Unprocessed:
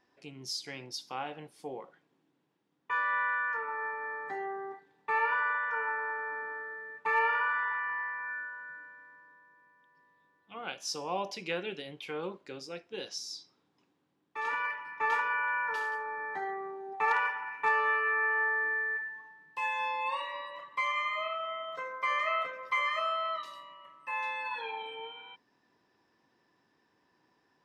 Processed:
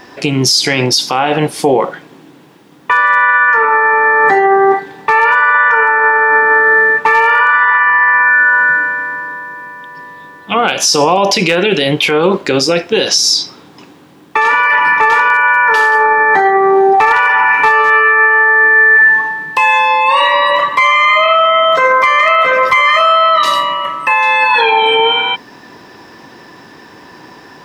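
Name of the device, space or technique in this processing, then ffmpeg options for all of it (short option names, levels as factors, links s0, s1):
loud club master: -af "acompressor=threshold=0.02:ratio=2.5,asoftclip=type=hard:threshold=0.0473,alimiter=level_in=63.1:limit=0.891:release=50:level=0:latency=1,volume=0.891"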